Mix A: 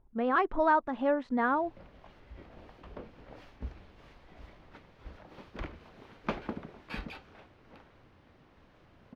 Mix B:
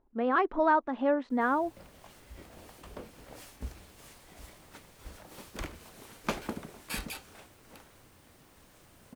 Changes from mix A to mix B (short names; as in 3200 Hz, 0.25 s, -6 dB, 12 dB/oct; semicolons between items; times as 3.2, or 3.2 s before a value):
speech: add resonant low shelf 200 Hz -8 dB, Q 1.5; background: remove air absorption 280 m